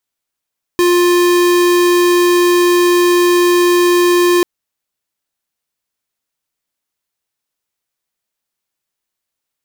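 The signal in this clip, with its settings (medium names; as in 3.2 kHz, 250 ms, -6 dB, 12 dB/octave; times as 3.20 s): tone square 352 Hz -10.5 dBFS 3.64 s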